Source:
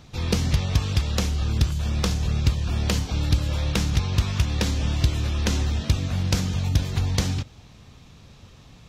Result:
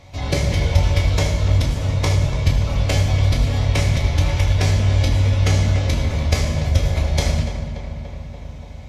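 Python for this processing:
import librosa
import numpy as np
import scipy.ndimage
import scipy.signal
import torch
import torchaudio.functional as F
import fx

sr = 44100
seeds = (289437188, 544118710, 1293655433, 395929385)

p1 = fx.small_body(x, sr, hz=(700.0, 2100.0), ring_ms=30, db=13)
p2 = fx.pitch_keep_formants(p1, sr, semitones=-3.5)
p3 = p2 + fx.echo_filtered(p2, sr, ms=289, feedback_pct=74, hz=3000.0, wet_db=-10.5, dry=0)
y = fx.rev_fdn(p3, sr, rt60_s=1.0, lf_ratio=1.3, hf_ratio=0.85, size_ms=63.0, drr_db=-0.5)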